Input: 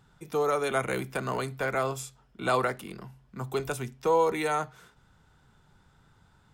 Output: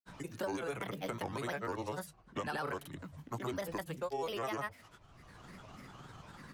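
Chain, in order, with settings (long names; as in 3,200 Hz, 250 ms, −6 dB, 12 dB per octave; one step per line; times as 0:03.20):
brickwall limiter −21 dBFS, peak gain reduction 6.5 dB
granular cloud, pitch spread up and down by 7 semitones
multiband upward and downward compressor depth 70%
level −6 dB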